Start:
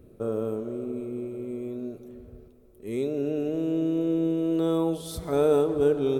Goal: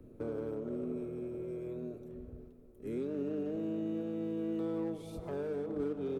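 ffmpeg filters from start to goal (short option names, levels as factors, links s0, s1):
-filter_complex "[0:a]highshelf=f=2600:g=-8.5,acrossover=split=360|1000[s0][s1][s2];[s0]acompressor=threshold=0.00891:ratio=4[s3];[s1]acompressor=threshold=0.0158:ratio=4[s4];[s2]acompressor=threshold=0.00141:ratio=4[s5];[s3][s4][s5]amix=inputs=3:normalize=0,asplit=2[s6][s7];[s7]asetrate=29433,aresample=44100,atempo=1.49831,volume=0.501[s8];[s6][s8]amix=inputs=2:normalize=0,acrossover=split=440[s9][s10];[s10]asoftclip=type=hard:threshold=0.0119[s11];[s9][s11]amix=inputs=2:normalize=0,asplit=2[s12][s13];[s13]adelay=90,highpass=300,lowpass=3400,asoftclip=type=hard:threshold=0.0237,volume=0.2[s14];[s12][s14]amix=inputs=2:normalize=0,volume=0.708"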